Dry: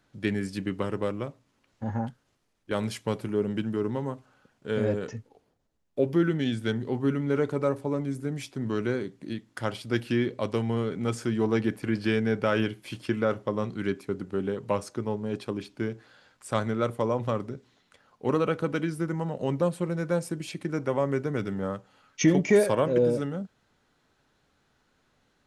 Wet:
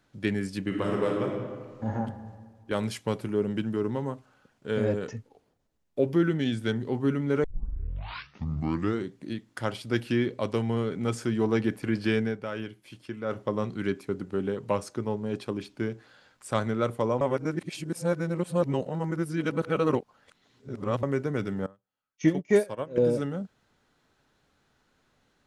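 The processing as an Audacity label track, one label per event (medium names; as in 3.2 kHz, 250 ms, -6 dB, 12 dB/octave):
0.660000	1.920000	reverb throw, RT60 1.6 s, DRR -1 dB
7.440000	7.440000	tape start 1.68 s
12.210000	13.390000	dip -9.5 dB, fades 0.16 s
17.210000	21.030000	reverse
21.660000	22.980000	upward expansion 2.5:1, over -36 dBFS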